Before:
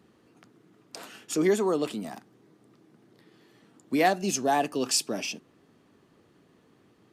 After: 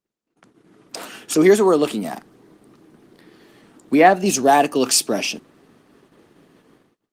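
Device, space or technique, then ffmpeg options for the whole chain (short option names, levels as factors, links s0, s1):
video call: -filter_complex "[0:a]asettb=1/sr,asplit=3[s0][s1][s2];[s0]atrim=end=2.164[s3];[s1]atrim=start=2.16:end=4.26,asetpts=PTS-STARTPTS,afade=t=in:d=0.004:c=qsin,afade=t=out:st=2.096:d=0.004:c=qsin,acrossover=split=2600[s4][s5];[s5]acompressor=threshold=0.00398:ratio=4:attack=1:release=60[s6];[s4][s6]amix=inputs=2:normalize=0[s7];[s2]atrim=start=4.256[s8];[s3][s7]acrossfade=d=0.004:c1=hsin:c2=qsin[s9];[s9][s8]acrossfade=d=0.004:c1=qsin:c2=hsin,highpass=f=170:p=1,dynaudnorm=f=420:g=3:m=2,agate=range=0.0224:threshold=0.00141:ratio=16:detection=peak,volume=1.88" -ar 48000 -c:a libopus -b:a 24k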